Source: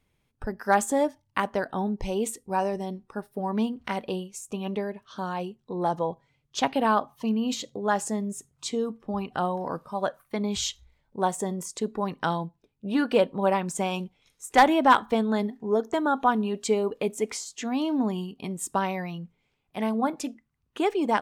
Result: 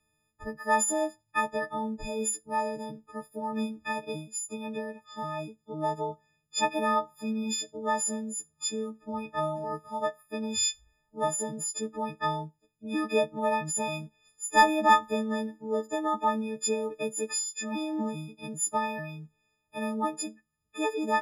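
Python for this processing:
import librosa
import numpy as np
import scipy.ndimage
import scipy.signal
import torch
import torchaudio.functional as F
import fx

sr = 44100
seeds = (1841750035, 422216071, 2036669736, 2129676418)

y = fx.freq_snap(x, sr, grid_st=6)
y = scipy.signal.sosfilt(scipy.signal.butter(2, 10000.0, 'lowpass', fs=sr, output='sos'), y)
y = fx.peak_eq(y, sr, hz=4100.0, db=-6.0, octaves=1.6)
y = y * 10.0 ** (-5.5 / 20.0)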